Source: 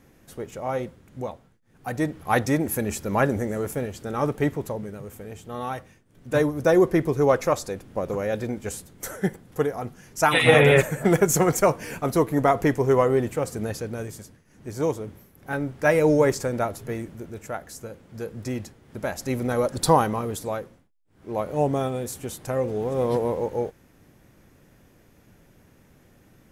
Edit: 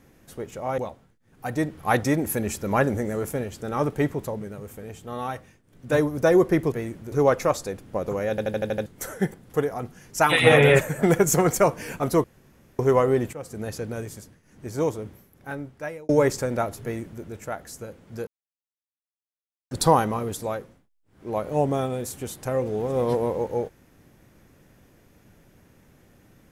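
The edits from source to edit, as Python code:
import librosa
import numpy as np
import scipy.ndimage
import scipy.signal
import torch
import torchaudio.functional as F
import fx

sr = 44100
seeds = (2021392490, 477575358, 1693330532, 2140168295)

y = fx.edit(x, sr, fx.cut(start_s=0.78, length_s=0.42),
    fx.stutter_over(start_s=8.32, slice_s=0.08, count=7),
    fx.room_tone_fill(start_s=12.26, length_s=0.55),
    fx.fade_in_from(start_s=13.35, length_s=0.5, floor_db=-13.5),
    fx.fade_out_span(start_s=15.07, length_s=1.04),
    fx.duplicate(start_s=16.85, length_s=0.4, to_s=7.14),
    fx.silence(start_s=18.29, length_s=1.44), tone=tone)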